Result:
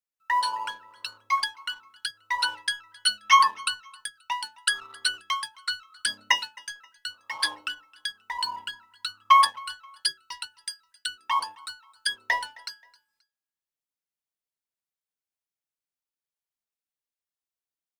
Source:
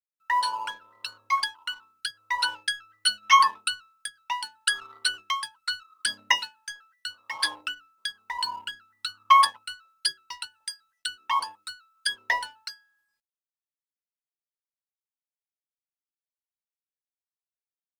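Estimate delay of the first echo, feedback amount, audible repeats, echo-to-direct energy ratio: 265 ms, 34%, 2, -23.5 dB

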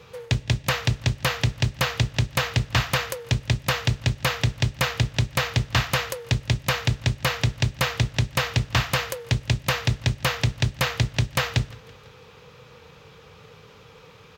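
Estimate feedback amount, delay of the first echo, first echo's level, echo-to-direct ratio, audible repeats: 56%, 166 ms, -23.0 dB, -21.5 dB, 3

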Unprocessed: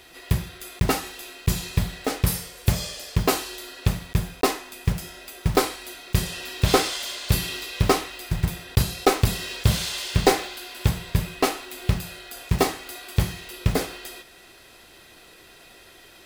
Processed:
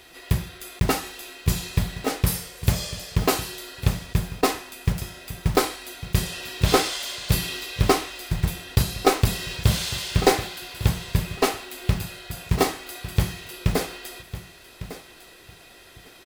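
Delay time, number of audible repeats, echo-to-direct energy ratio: 1153 ms, 2, -14.0 dB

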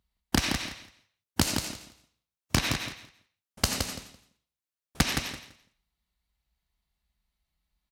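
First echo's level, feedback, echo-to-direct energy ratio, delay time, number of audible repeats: -6.0 dB, 18%, -6.0 dB, 168 ms, 2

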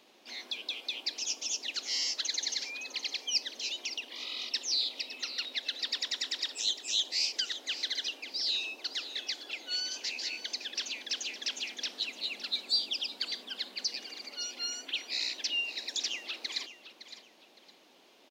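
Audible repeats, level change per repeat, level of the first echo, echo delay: 2, -11.0 dB, -13.0 dB, 562 ms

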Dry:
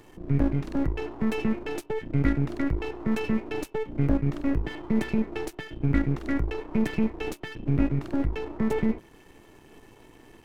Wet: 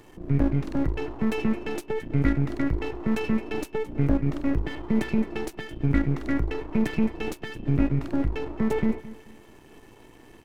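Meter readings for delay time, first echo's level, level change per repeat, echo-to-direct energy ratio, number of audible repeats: 218 ms, -17.0 dB, -10.5 dB, -16.5 dB, 2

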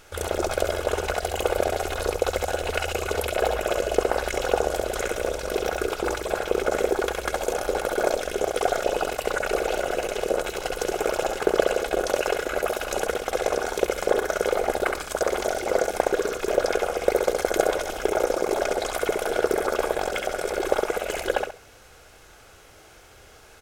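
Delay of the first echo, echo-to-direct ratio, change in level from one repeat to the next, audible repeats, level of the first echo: 67 ms, -4.5 dB, -13.5 dB, 2, -4.5 dB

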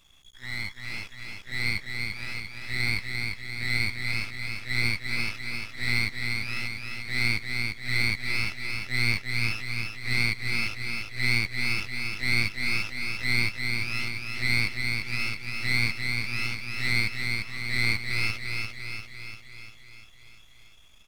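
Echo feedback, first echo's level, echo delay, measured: 59%, -4.0 dB, 346 ms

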